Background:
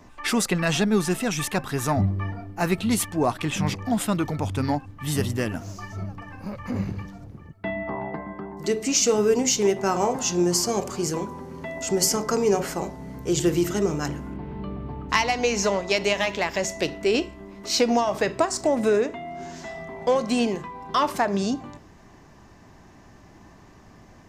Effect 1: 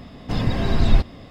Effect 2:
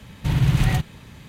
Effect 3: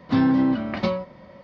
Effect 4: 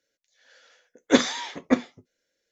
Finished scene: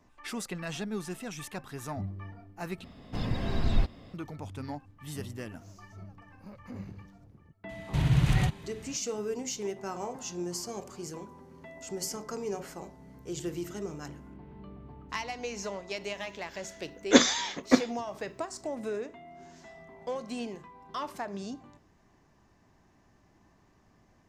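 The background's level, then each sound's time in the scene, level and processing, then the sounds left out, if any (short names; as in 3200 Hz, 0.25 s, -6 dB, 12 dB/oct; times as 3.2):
background -14 dB
2.84 replace with 1 -9.5 dB
7.69 add 2 -5.5 dB + LPF 11000 Hz
16.01 add 4 -1 dB + high shelf 6400 Hz +10.5 dB
not used: 3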